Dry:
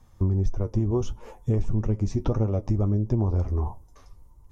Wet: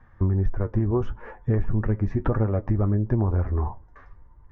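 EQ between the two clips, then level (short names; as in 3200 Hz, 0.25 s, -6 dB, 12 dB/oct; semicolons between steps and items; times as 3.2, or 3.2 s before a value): synth low-pass 1700 Hz, resonance Q 5.4; +1.0 dB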